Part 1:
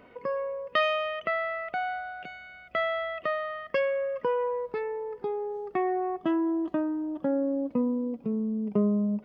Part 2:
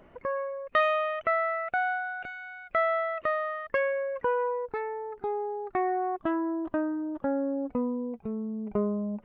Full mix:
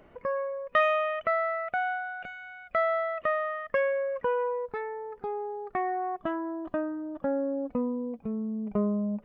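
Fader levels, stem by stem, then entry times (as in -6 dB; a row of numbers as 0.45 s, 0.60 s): -11.5 dB, -1.0 dB; 0.00 s, 0.00 s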